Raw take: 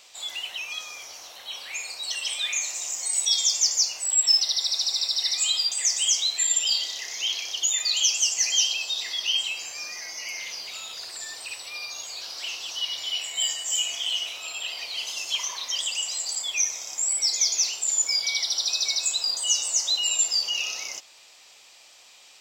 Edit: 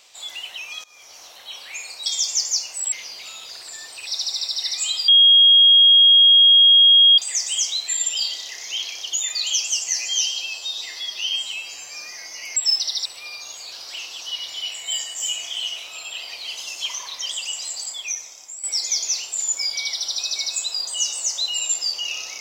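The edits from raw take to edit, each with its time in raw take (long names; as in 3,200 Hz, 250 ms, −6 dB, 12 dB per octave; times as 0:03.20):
0:00.84–0:01.22: fade in, from −20 dB
0:02.06–0:03.32: remove
0:04.18–0:04.67: swap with 0:10.40–0:11.55
0:05.68: insert tone 3,270 Hz −8.5 dBFS 2.10 s
0:08.39–0:09.72: time-stretch 1.5×
0:16.23–0:17.13: fade out, to −13 dB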